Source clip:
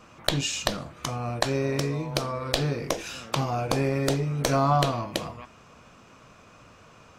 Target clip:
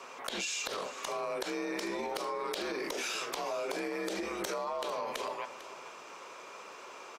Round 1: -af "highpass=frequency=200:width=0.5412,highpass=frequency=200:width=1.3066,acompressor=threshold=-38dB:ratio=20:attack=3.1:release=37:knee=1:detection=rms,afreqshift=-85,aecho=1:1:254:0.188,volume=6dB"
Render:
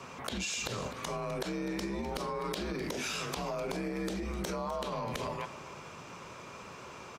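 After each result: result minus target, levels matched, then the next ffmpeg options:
echo 195 ms early; 250 Hz band +4.5 dB
-af "highpass=frequency=200:width=0.5412,highpass=frequency=200:width=1.3066,acompressor=threshold=-38dB:ratio=20:attack=3.1:release=37:knee=1:detection=rms,afreqshift=-85,aecho=1:1:449:0.188,volume=6dB"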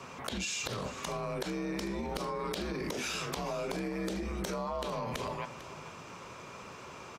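250 Hz band +4.5 dB
-af "highpass=frequency=450:width=0.5412,highpass=frequency=450:width=1.3066,acompressor=threshold=-38dB:ratio=20:attack=3.1:release=37:knee=1:detection=rms,afreqshift=-85,aecho=1:1:449:0.188,volume=6dB"

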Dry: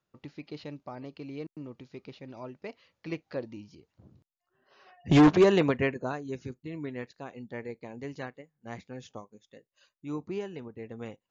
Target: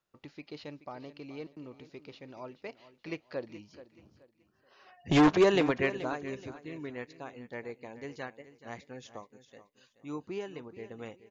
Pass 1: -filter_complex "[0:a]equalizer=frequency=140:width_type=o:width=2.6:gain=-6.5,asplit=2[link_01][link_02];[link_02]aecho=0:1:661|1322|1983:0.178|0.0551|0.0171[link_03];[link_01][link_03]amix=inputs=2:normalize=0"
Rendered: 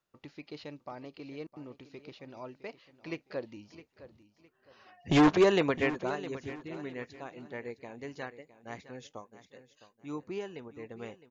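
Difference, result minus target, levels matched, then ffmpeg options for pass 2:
echo 233 ms late
-filter_complex "[0:a]equalizer=frequency=140:width_type=o:width=2.6:gain=-6.5,asplit=2[link_01][link_02];[link_02]aecho=0:1:428|856|1284:0.178|0.0551|0.0171[link_03];[link_01][link_03]amix=inputs=2:normalize=0"

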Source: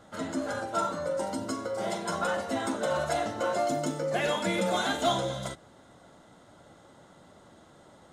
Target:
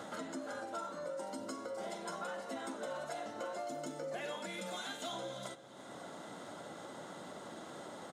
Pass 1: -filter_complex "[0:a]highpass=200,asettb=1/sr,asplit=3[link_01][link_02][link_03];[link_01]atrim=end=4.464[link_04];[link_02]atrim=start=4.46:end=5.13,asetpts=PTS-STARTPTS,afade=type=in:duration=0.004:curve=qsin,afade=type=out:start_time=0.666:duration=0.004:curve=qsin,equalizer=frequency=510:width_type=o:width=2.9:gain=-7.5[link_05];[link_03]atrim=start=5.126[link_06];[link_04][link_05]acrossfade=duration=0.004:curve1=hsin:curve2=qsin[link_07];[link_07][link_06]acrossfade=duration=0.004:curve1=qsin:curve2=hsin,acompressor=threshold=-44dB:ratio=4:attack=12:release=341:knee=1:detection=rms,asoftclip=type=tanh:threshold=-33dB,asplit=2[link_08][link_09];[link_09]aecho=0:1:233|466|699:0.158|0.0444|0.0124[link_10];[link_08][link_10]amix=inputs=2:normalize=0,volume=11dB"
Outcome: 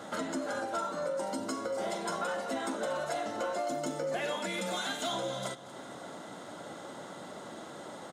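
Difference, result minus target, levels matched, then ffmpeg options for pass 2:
downward compressor: peak gain reduction −8 dB; echo 110 ms early
-filter_complex "[0:a]highpass=200,asettb=1/sr,asplit=3[link_01][link_02][link_03];[link_01]atrim=end=4.464[link_04];[link_02]atrim=start=4.46:end=5.13,asetpts=PTS-STARTPTS,afade=type=in:duration=0.004:curve=qsin,afade=type=out:start_time=0.666:duration=0.004:curve=qsin,equalizer=frequency=510:width_type=o:width=2.9:gain=-7.5[link_05];[link_03]atrim=start=5.126[link_06];[link_04][link_05]acrossfade=duration=0.004:curve1=hsin:curve2=qsin[link_07];[link_07][link_06]acrossfade=duration=0.004:curve1=qsin:curve2=hsin,acompressor=threshold=-55dB:ratio=4:attack=12:release=341:knee=1:detection=rms,asoftclip=type=tanh:threshold=-33dB,asplit=2[link_08][link_09];[link_09]aecho=0:1:343|686|1029:0.158|0.0444|0.0124[link_10];[link_08][link_10]amix=inputs=2:normalize=0,volume=11dB"

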